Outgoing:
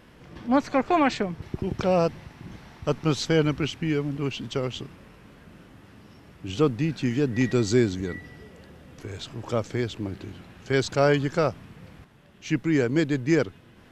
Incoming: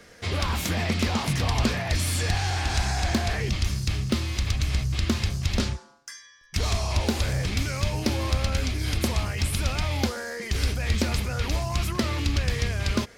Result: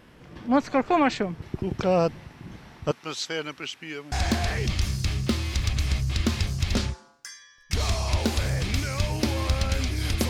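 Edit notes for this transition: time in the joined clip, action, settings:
outgoing
0:02.91–0:04.12: high-pass filter 1,400 Hz 6 dB per octave
0:04.12: continue with incoming from 0:02.95

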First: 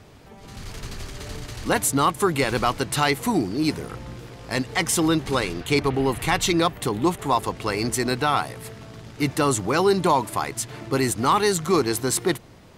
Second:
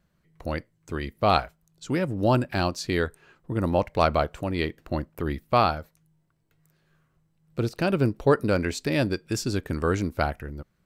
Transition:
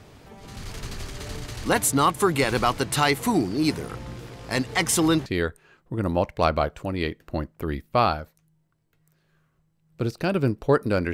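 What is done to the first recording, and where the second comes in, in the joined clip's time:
first
0:05.26: continue with second from 0:02.84

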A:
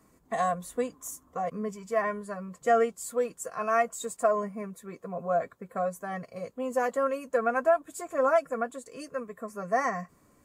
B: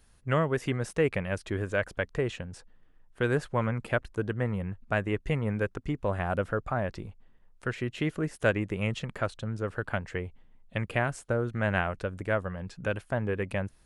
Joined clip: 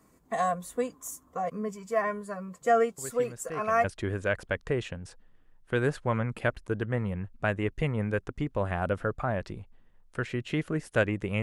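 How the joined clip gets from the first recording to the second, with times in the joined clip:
A
0:02.98: mix in B from 0:00.46 0.86 s −13 dB
0:03.84: continue with B from 0:01.32

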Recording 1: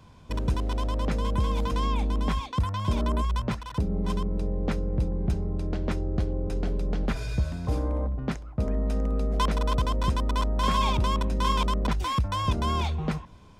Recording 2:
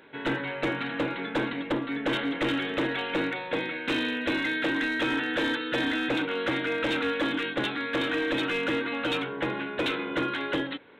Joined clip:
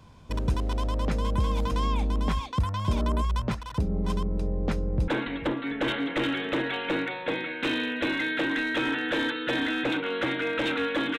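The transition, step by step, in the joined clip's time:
recording 1
0:04.82–0:05.08: delay throw 440 ms, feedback 35%, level −18 dB
0:05.08: continue with recording 2 from 0:01.33

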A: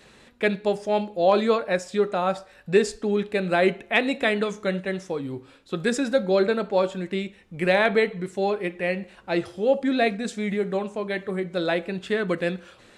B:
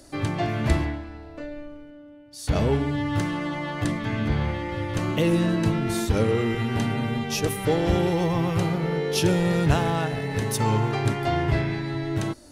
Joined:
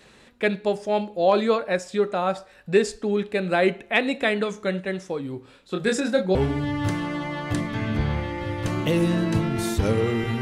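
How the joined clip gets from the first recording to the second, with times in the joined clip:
A
0:05.42–0:06.35: double-tracking delay 27 ms −4 dB
0:06.35: continue with B from 0:02.66

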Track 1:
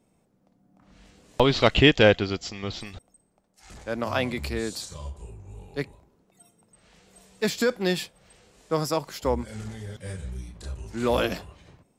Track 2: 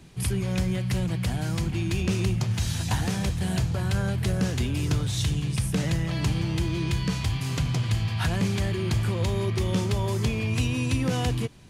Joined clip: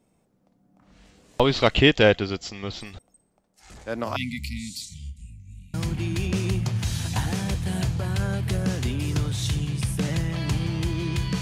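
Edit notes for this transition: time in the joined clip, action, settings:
track 1
0:04.16–0:05.74: linear-phase brick-wall band-stop 280–1,900 Hz
0:05.74: continue with track 2 from 0:01.49

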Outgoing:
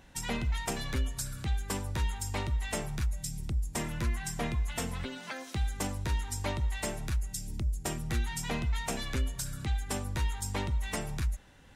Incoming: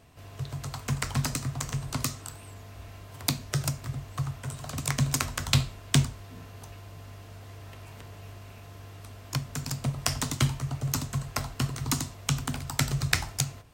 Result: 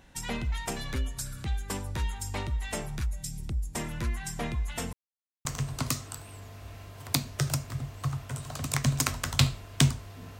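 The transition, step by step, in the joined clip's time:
outgoing
0:04.93–0:05.45: silence
0:05.45: continue with incoming from 0:01.59

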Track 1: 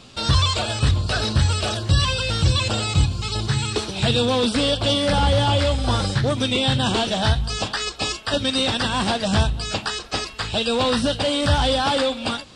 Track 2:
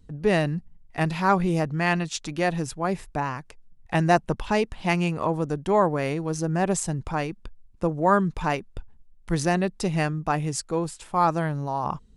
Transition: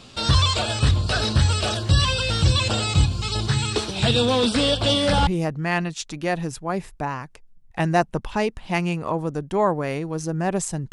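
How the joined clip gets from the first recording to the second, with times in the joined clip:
track 1
0:05.27: continue with track 2 from 0:01.42

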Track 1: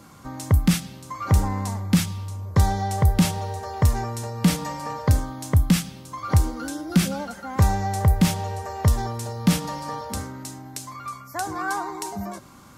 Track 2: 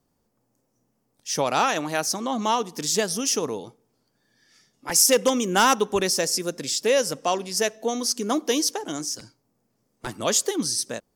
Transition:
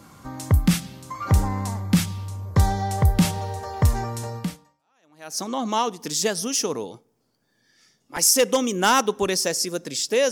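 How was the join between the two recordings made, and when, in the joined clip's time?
track 1
0:04.88: continue with track 2 from 0:01.61, crossfade 1.04 s exponential

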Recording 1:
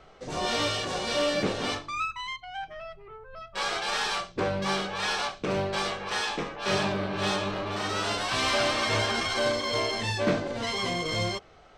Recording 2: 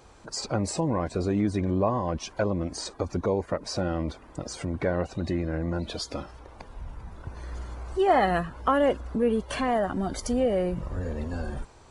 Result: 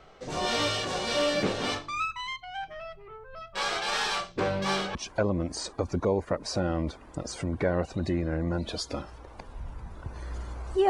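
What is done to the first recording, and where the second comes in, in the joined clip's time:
recording 1
0:04.95: continue with recording 2 from 0:02.16

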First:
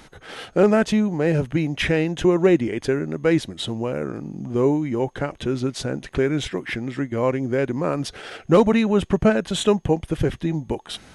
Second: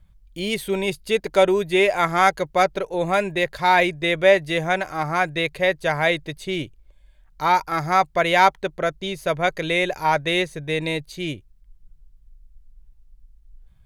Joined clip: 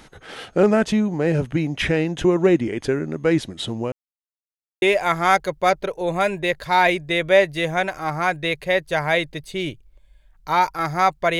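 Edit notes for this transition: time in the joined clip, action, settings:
first
0:03.92–0:04.82: silence
0:04.82: continue with second from 0:01.75

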